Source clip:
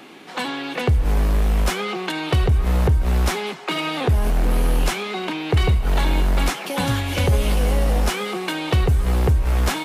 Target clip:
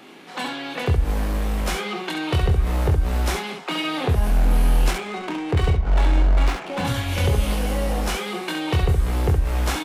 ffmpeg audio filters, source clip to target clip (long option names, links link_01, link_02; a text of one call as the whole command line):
ffmpeg -i in.wav -filter_complex "[0:a]asettb=1/sr,asplit=3[link_01][link_02][link_03];[link_01]atrim=end=4.914[link_04];[link_02]atrim=start=4.91:end=6.85,asetpts=PTS-STARTPTS,afade=type=in:duration=0.004:curve=qsin,afade=type=out:start_time=1.936:duration=0.004:curve=qsin,adynamicsmooth=sensitivity=3:basefreq=910[link_05];[link_03]atrim=start=6.846[link_06];[link_04][link_05]acrossfade=duration=0.004:curve1=hsin:curve2=qsin[link_07];[link_07][link_06]acrossfade=duration=0.004:curve1=qsin:curve2=hsin,asplit=2[link_08][link_09];[link_09]aecho=0:1:23|68:0.531|0.531[link_10];[link_08][link_10]amix=inputs=2:normalize=0,volume=-3.5dB" out.wav